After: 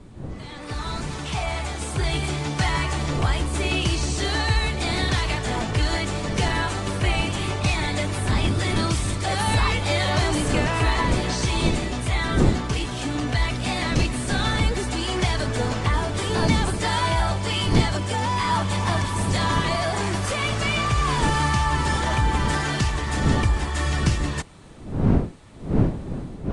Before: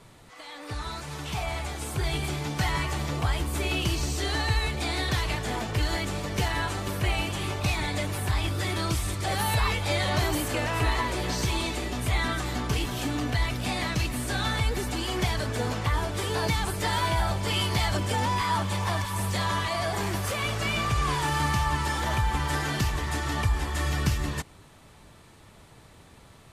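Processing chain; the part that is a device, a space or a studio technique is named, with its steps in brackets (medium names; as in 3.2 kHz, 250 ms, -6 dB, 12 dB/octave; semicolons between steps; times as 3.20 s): smartphone video outdoors (wind noise 230 Hz -32 dBFS; level rider gain up to 8 dB; trim -3.5 dB; AAC 96 kbps 22.05 kHz)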